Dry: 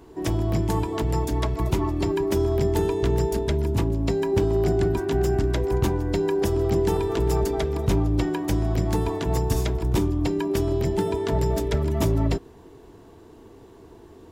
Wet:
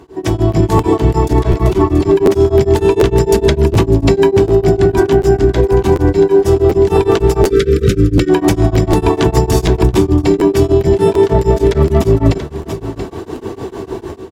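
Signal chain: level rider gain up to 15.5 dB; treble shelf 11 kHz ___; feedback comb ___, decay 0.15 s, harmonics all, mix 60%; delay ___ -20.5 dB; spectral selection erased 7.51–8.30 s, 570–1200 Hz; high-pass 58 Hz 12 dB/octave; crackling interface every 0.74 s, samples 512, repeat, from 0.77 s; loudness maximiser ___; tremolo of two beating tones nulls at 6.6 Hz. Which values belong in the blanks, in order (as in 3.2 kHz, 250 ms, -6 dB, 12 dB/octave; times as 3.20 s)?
-9.5 dB, 380 Hz, 680 ms, +16.5 dB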